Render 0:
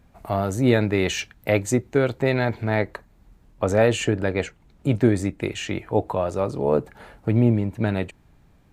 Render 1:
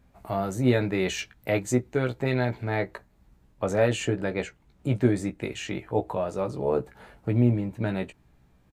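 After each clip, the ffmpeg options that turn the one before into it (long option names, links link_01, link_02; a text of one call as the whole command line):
ffmpeg -i in.wav -filter_complex "[0:a]asplit=2[link_01][link_02];[link_02]adelay=16,volume=-6dB[link_03];[link_01][link_03]amix=inputs=2:normalize=0,volume=-5.5dB" out.wav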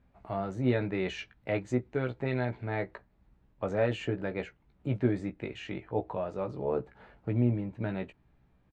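ffmpeg -i in.wav -af "lowpass=3300,volume=-5.5dB" out.wav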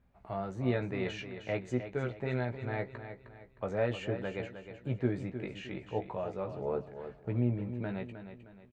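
ffmpeg -i in.wav -af "equalizer=frequency=290:width=6.9:gain=-5.5,aecho=1:1:310|620|930|1240:0.316|0.12|0.0457|0.0174,volume=-3dB" out.wav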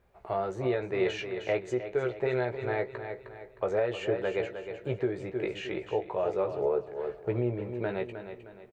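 ffmpeg -i in.wav -filter_complex "[0:a]lowshelf=frequency=310:width_type=q:width=3:gain=-6,alimiter=level_in=1dB:limit=-24dB:level=0:latency=1:release=344,volume=-1dB,asplit=2[link_01][link_02];[link_02]adelay=364,lowpass=frequency=2000:poles=1,volume=-23dB,asplit=2[link_03][link_04];[link_04]adelay=364,lowpass=frequency=2000:poles=1,volume=0.41,asplit=2[link_05][link_06];[link_06]adelay=364,lowpass=frequency=2000:poles=1,volume=0.41[link_07];[link_01][link_03][link_05][link_07]amix=inputs=4:normalize=0,volume=6.5dB" out.wav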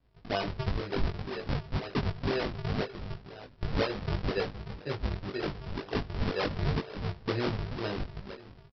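ffmpeg -i in.wav -filter_complex "[0:a]aresample=11025,acrusher=samples=24:mix=1:aa=0.000001:lfo=1:lforange=38.4:lforate=2,aresample=44100,asplit=2[link_01][link_02];[link_02]adelay=20,volume=-3dB[link_03];[link_01][link_03]amix=inputs=2:normalize=0,volume=-2.5dB" out.wav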